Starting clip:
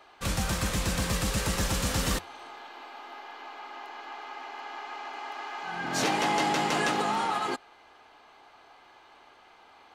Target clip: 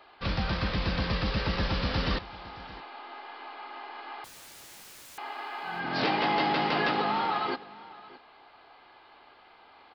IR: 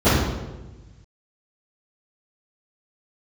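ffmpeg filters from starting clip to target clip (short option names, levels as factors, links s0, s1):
-filter_complex "[0:a]aresample=11025,aresample=44100,asettb=1/sr,asplit=3[s0][s1][s2];[s0]atrim=end=4.244[s3];[s1]atrim=start=4.24:end=5.18,asetpts=PTS-STARTPTS,afade=t=in:d=0.004:c=qsin,afade=t=out:st=0.936:d=0.004:c=qsin,aeval=exprs='(mod(168*val(0)+1,2)-1)/168':c=same[s4];[s2]atrim=start=5.176[s5];[s3][s4]acrossfade=d=0.004:c1=hsin:c2=qsin[s6];[s6][s5]acrossfade=d=0.004:c1=qsin:c2=hsin,aecho=1:1:618:0.106"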